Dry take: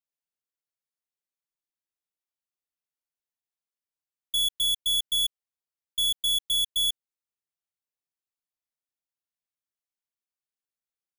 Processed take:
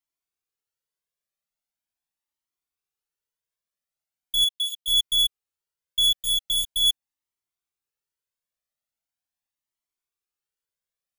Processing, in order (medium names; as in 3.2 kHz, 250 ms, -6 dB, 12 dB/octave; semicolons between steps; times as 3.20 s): 4.44–4.88 s: ladder high-pass 2.6 kHz, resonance 40%; Shepard-style flanger rising 0.41 Hz; trim +7 dB